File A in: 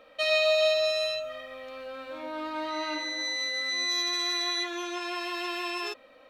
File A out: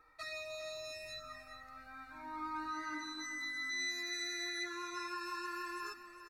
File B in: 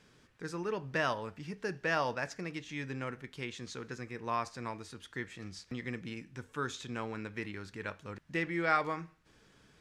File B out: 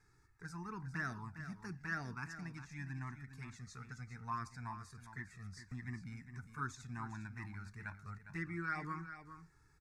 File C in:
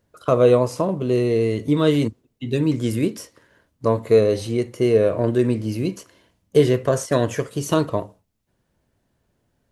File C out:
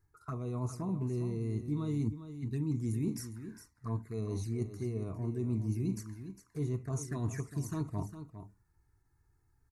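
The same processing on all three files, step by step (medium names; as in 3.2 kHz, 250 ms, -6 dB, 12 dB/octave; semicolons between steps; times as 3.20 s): bass shelf 120 Hz +6 dB; reverse; compression 5:1, threshold -26 dBFS; reverse; touch-sensitive flanger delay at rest 2.4 ms, full sweep at -25 dBFS; static phaser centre 1.3 kHz, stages 4; on a send: delay 406 ms -11 dB; on the sum: endings held to a fixed fall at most 280 dB/s; trim -2 dB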